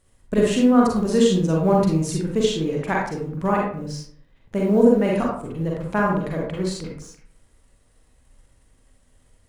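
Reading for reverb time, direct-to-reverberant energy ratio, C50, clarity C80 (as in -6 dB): 0.55 s, -2.5 dB, 1.0 dB, 6.5 dB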